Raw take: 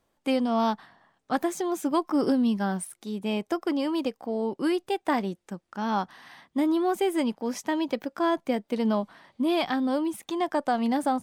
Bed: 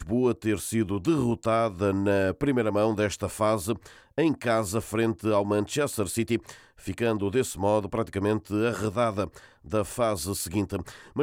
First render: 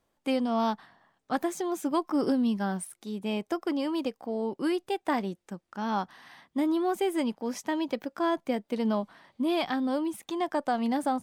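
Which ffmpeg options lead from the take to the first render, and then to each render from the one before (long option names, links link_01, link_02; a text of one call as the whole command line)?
ffmpeg -i in.wav -af "volume=-2.5dB" out.wav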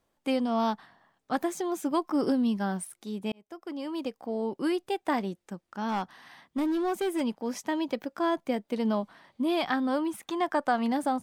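ffmpeg -i in.wav -filter_complex "[0:a]asettb=1/sr,asplit=3[link_01][link_02][link_03];[link_01]atrim=end=5.884[link_04];[link_02]atrim=start=5.88:end=7.21,asetpts=PTS-STARTPTS,afade=type=in:duration=0.004:curve=qsin,afade=type=out:start_time=1.326:duration=0.004:curve=qsin,asoftclip=type=hard:threshold=-24.5dB[link_05];[link_03]atrim=start=7.206[link_06];[link_04][link_05]acrossfade=duration=0.004:curve1=hsin:curve2=qsin[link_07];[link_07][link_06]acrossfade=duration=0.004:curve1=qsin:curve2=hsin,asettb=1/sr,asplit=3[link_08][link_09][link_10];[link_08]atrim=end=9.654[link_11];[link_09]atrim=start=9.65:end=10.92,asetpts=PTS-STARTPTS,afade=type=in:duration=0.004:curve=qsin,afade=type=out:start_time=1.266:duration=0.004:curve=qsin,equalizer=frequency=1400:width=1.1:gain=6[link_12];[link_10]atrim=start=10.916[link_13];[link_11][link_12]acrossfade=duration=0.004:curve1=hsin:curve2=qsin[link_14];[link_14][link_13]acrossfade=duration=0.004:curve1=qsin:curve2=hsin,asplit=2[link_15][link_16];[link_15]atrim=end=3.32,asetpts=PTS-STARTPTS,afade=type=out:start_time=3.316:duration=0.004:curve=hsin[link_17];[link_16]atrim=start=3.32,asetpts=PTS-STARTPTS,afade=type=in:duration=0.98[link_18];[link_17][link_18]concat=n=2:v=0:a=1" out.wav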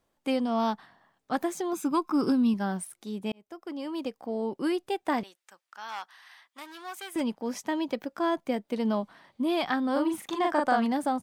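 ffmpeg -i in.wav -filter_complex "[0:a]asettb=1/sr,asplit=3[link_01][link_02][link_03];[link_01]atrim=end=1.734[link_04];[link_02]atrim=start=1.73:end=2.54,asetpts=PTS-STARTPTS,afade=type=in:duration=0.004:curve=qsin,afade=type=out:start_time=0.806:duration=0.004:curve=qsin,aecho=1:1:0.8:0.58,atrim=end_sample=35721[link_05];[link_03]atrim=start=2.536[link_06];[link_04][link_05]acrossfade=duration=0.004:curve1=hsin:curve2=qsin[link_07];[link_07][link_06]acrossfade=duration=0.004:curve1=qsin:curve2=hsin,asettb=1/sr,asplit=3[link_08][link_09][link_10];[link_08]atrim=end=5.234[link_11];[link_09]atrim=start=5.23:end=7.16,asetpts=PTS-STARTPTS,afade=type=in:duration=0.004:curve=qsin,afade=type=out:start_time=1.926:duration=0.004:curve=qsin,highpass=1200[link_12];[link_10]atrim=start=7.156[link_13];[link_11][link_12]acrossfade=duration=0.004:curve1=hsin:curve2=qsin[link_14];[link_14][link_13]acrossfade=duration=0.004:curve1=qsin:curve2=hsin,asplit=3[link_15][link_16][link_17];[link_15]afade=type=out:start_time=9.95:duration=0.02[link_18];[link_16]asplit=2[link_19][link_20];[link_20]adelay=40,volume=-2dB[link_21];[link_19][link_21]amix=inputs=2:normalize=0,afade=type=in:start_time=9.95:duration=0.02,afade=type=out:start_time=10.84:duration=0.02[link_22];[link_17]afade=type=in:start_time=10.84:duration=0.02[link_23];[link_18][link_22][link_23]amix=inputs=3:normalize=0" out.wav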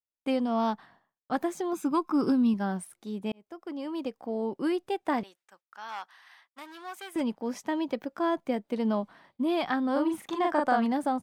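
ffmpeg -i in.wav -af "highshelf=frequency=2900:gain=-5.5,agate=range=-33dB:threshold=-54dB:ratio=3:detection=peak" out.wav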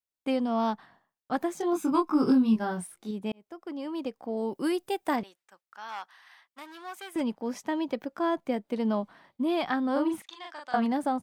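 ffmpeg -i in.wav -filter_complex "[0:a]asettb=1/sr,asplit=3[link_01][link_02][link_03];[link_01]atrim=end=1.584[link_04];[link_02]atrim=start=1.58:end=3.11,asetpts=PTS-STARTPTS,afade=type=in:duration=0.004:curve=qsin,afade=type=out:start_time=1.526:duration=0.004:curve=qsin,asplit=2[link_05][link_06];[link_06]adelay=23,volume=-2.5dB[link_07];[link_05][link_07]amix=inputs=2:normalize=0,atrim=end_sample=67473[link_08];[link_03]atrim=start=3.106[link_09];[link_04][link_08]acrossfade=duration=0.004:curve1=hsin:curve2=qsin[link_10];[link_10][link_09]acrossfade=duration=0.004:curve1=qsin:curve2=hsin,asettb=1/sr,asplit=3[link_11][link_12][link_13];[link_11]atrim=end=4.374[link_14];[link_12]atrim=start=4.37:end=5.16,asetpts=PTS-STARTPTS,afade=type=in:duration=0.004:curve=qsin,afade=type=out:start_time=0.786:duration=0.004:curve=qsin,aemphasis=mode=production:type=50kf[link_15];[link_13]atrim=start=5.156[link_16];[link_14][link_15]acrossfade=duration=0.004:curve1=hsin:curve2=qsin[link_17];[link_17][link_16]acrossfade=duration=0.004:curve1=qsin:curve2=hsin,asettb=1/sr,asplit=3[link_18][link_19][link_20];[link_18]atrim=end=10.224[link_21];[link_19]atrim=start=10.22:end=10.74,asetpts=PTS-STARTPTS,afade=type=in:duration=0.004:curve=qsin,afade=type=out:start_time=0.516:duration=0.004:curve=qsin,bandpass=frequency=4200:width_type=q:width=1.3[link_22];[link_20]atrim=start=10.736[link_23];[link_21][link_22]acrossfade=duration=0.004:curve1=hsin:curve2=qsin[link_24];[link_24][link_23]acrossfade=duration=0.004:curve1=qsin:curve2=hsin" out.wav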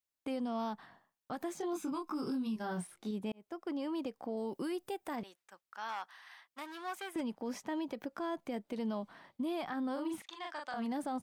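ffmpeg -i in.wav -filter_complex "[0:a]acrossover=split=2600|6600[link_01][link_02][link_03];[link_01]acompressor=threshold=-32dB:ratio=4[link_04];[link_02]acompressor=threshold=-53dB:ratio=4[link_05];[link_03]acompressor=threshold=-55dB:ratio=4[link_06];[link_04][link_05][link_06]amix=inputs=3:normalize=0,alimiter=level_in=6dB:limit=-24dB:level=0:latency=1:release=68,volume=-6dB" out.wav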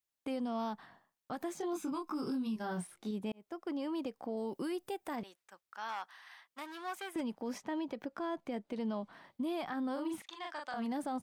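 ffmpeg -i in.wav -filter_complex "[0:a]asettb=1/sr,asplit=3[link_01][link_02][link_03];[link_01]atrim=end=7.584[link_04];[link_02]atrim=start=7.58:end=9.13,asetpts=PTS-STARTPTS,afade=type=in:duration=0.004:curve=qsin,afade=type=out:start_time=1.546:duration=0.004:curve=qsin,highshelf=frequency=8500:gain=-10.5[link_05];[link_03]atrim=start=9.126[link_06];[link_04][link_05]acrossfade=duration=0.004:curve1=hsin:curve2=qsin[link_07];[link_07][link_06]acrossfade=duration=0.004:curve1=qsin:curve2=hsin" out.wav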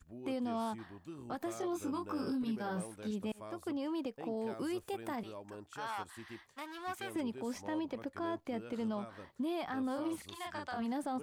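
ffmpeg -i in.wav -i bed.wav -filter_complex "[1:a]volume=-24dB[link_01];[0:a][link_01]amix=inputs=2:normalize=0" out.wav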